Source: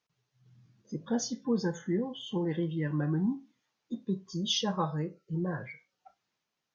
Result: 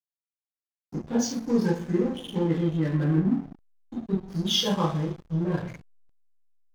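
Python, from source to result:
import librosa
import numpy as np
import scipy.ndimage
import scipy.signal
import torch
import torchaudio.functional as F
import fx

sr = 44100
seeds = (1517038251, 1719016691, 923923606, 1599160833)

y = fx.rev_double_slope(x, sr, seeds[0], early_s=0.46, late_s=2.0, knee_db=-18, drr_db=-5.0)
y = fx.backlash(y, sr, play_db=-30.5)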